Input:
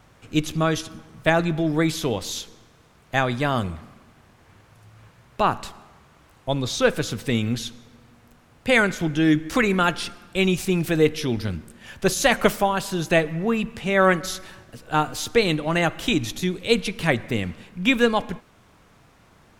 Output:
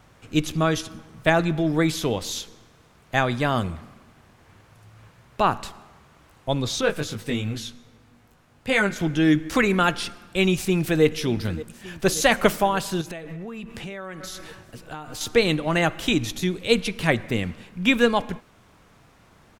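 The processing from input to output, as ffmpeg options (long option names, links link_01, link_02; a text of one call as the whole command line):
ffmpeg -i in.wav -filter_complex "[0:a]asettb=1/sr,asplit=3[link_01][link_02][link_03];[link_01]atrim=end=6.814[link_04];[link_02]atrim=start=6.81:end=8.96,asetpts=PTS-STARTPTS,afade=type=in:duration=0.004:curve=qsin,afade=type=out:start_time=2.146:duration=0.004:curve=qsin,flanger=delay=18.5:depth=2.1:speed=2.6[link_05];[link_03]atrim=start=8.956[link_06];[link_04][link_05]acrossfade=duration=0.004:curve1=hsin:curve2=qsin[link_07];[link_07][link_06]acrossfade=duration=0.004:curve1=qsin:curve2=hsin,asplit=2[link_08][link_09];[link_09]afade=type=in:start_time=10.53:duration=0.01,afade=type=out:start_time=11.04:duration=0.01,aecho=0:1:580|1160|1740|2320|2900|3480|4060|4640|5220|5800:0.149624|0.112218|0.0841633|0.0631224|0.0473418|0.0355064|0.0266298|0.0199723|0.0149793|0.0112344[link_10];[link_08][link_10]amix=inputs=2:normalize=0,asettb=1/sr,asplit=3[link_11][link_12][link_13];[link_11]atrim=end=13.014[link_14];[link_12]atrim=start=13.01:end=15.21,asetpts=PTS-STARTPTS,afade=type=in:duration=0.004:curve=qsin,afade=type=out:start_time=2.196:duration=0.004:curve=qsin,acompressor=threshold=-31dB:ratio=16:attack=3.2:release=140:knee=1:detection=peak[link_15];[link_13]atrim=start=15.206[link_16];[link_14][link_15]acrossfade=duration=0.004:curve1=hsin:curve2=qsin[link_17];[link_17][link_16]acrossfade=duration=0.004:curve1=qsin:curve2=hsin" out.wav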